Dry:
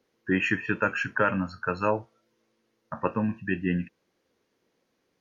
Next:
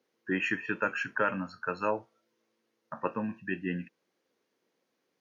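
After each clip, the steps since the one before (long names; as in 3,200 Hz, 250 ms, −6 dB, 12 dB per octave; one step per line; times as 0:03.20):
Bessel high-pass filter 210 Hz, order 2
level −4 dB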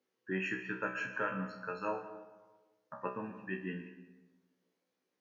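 tuned comb filter 63 Hz, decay 0.34 s, harmonics all, mix 90%
convolution reverb RT60 1.3 s, pre-delay 90 ms, DRR 11 dB
level +1 dB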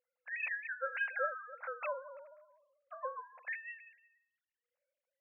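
three sine waves on the formant tracks
linear-phase brick-wall high-pass 480 Hz
level +1 dB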